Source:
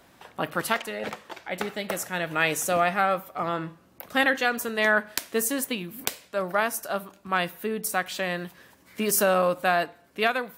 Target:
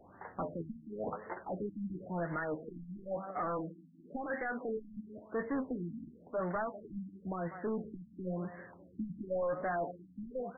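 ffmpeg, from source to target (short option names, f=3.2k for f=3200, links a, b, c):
-filter_complex "[0:a]lowpass=4.9k,asplit=2[a][b];[b]adelay=195,lowpass=f=820:p=1,volume=-19dB,asplit=2[c][d];[d]adelay=195,lowpass=f=820:p=1,volume=0.51,asplit=2[e][f];[f]adelay=195,lowpass=f=820:p=1,volume=0.51,asplit=2[g][h];[h]adelay=195,lowpass=f=820:p=1,volume=0.51[i];[a][c][e][g][i]amix=inputs=5:normalize=0,flanger=delay=9.5:depth=3.6:regen=51:speed=0.58:shape=triangular,asettb=1/sr,asplit=3[j][k][l];[j]atrim=end=2.364[m];[k]atrim=start=2.36:end=4.97,asetpts=PTS-STARTPTS,afade=t=in:d=0.004:c=qsin,afade=t=out:st=2.606:d=0.004:c=qsin,highpass=f=180:w=0.5412,highpass=f=180:w=1.3066[n];[l]atrim=start=4.966[o];[m][n]acrossfade=d=0.004:c1=hsin:c2=qsin[p];[p][o]acrossfade=d=0.004:c1=qsin:c2=hsin,alimiter=limit=-22dB:level=0:latency=1:release=216,asoftclip=type=tanh:threshold=-34.5dB,afftfilt=real='re*lt(b*sr/1024,290*pow(2200/290,0.5+0.5*sin(2*PI*0.96*pts/sr)))':imag='im*lt(b*sr/1024,290*pow(2200/290,0.5+0.5*sin(2*PI*0.96*pts/sr)))':win_size=1024:overlap=0.75,volume=4dB"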